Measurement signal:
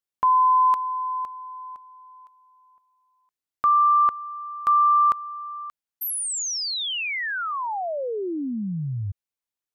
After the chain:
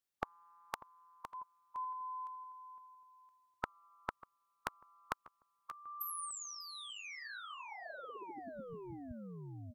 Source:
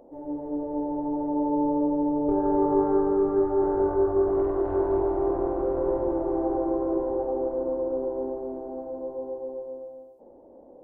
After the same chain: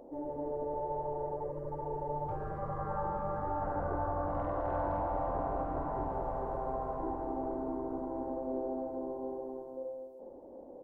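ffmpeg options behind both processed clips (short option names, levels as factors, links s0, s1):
-filter_complex "[0:a]asplit=2[s0][s1];[s1]adelay=593,lowpass=f=1500:p=1,volume=0.0944,asplit=2[s2][s3];[s3]adelay=593,lowpass=f=1500:p=1,volume=0.41,asplit=2[s4][s5];[s5]adelay=593,lowpass=f=1500:p=1,volume=0.41[s6];[s0][s2][s4][s6]amix=inputs=4:normalize=0,afftfilt=real='re*lt(hypot(re,im),0.178)':imag='im*lt(hypot(re,im),0.178)':win_size=1024:overlap=0.75"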